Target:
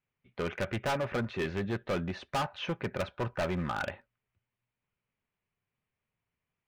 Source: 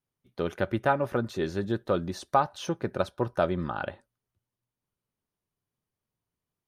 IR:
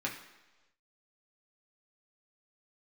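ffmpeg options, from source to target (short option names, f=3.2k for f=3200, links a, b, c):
-af "lowpass=f=2.4k:t=q:w=2.9,equalizer=f=320:t=o:w=0.36:g=-6,volume=27.5dB,asoftclip=hard,volume=-27.5dB"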